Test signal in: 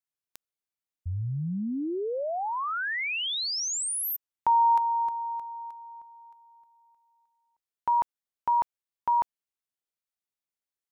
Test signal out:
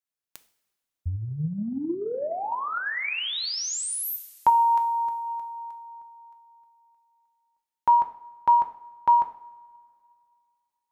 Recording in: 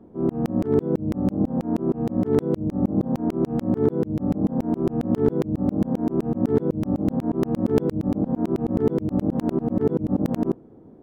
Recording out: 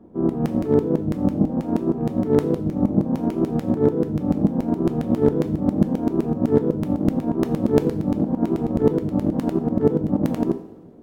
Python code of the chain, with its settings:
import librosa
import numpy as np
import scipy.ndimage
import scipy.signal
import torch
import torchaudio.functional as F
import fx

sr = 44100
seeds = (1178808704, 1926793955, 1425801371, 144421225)

y = fx.rev_double_slope(x, sr, seeds[0], early_s=0.52, late_s=2.5, knee_db=-18, drr_db=6.0)
y = fx.transient(y, sr, attack_db=6, sustain_db=2)
y = y * librosa.db_to_amplitude(-1.0)